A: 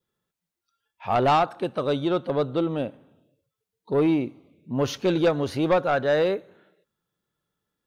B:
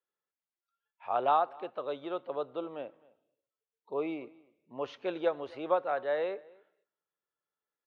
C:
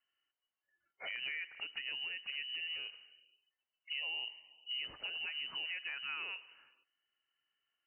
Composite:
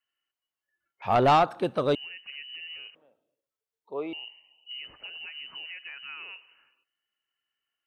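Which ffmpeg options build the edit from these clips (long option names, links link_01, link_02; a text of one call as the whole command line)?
ffmpeg -i take0.wav -i take1.wav -i take2.wav -filter_complex "[2:a]asplit=3[link_01][link_02][link_03];[link_01]atrim=end=1.022[link_04];[0:a]atrim=start=1.018:end=1.952[link_05];[link_02]atrim=start=1.948:end=2.952[link_06];[1:a]atrim=start=2.948:end=4.132[link_07];[link_03]atrim=start=4.128[link_08];[link_04][link_05]acrossfade=duration=0.004:curve1=hsin:curve2=hsin[link_09];[link_09][link_06]acrossfade=duration=0.004:curve1=hsin:curve2=hsin[link_10];[link_10][link_07]acrossfade=duration=0.004:curve1=hsin:curve2=hsin[link_11];[link_11][link_08]acrossfade=duration=0.004:curve1=hsin:curve2=hsin" out.wav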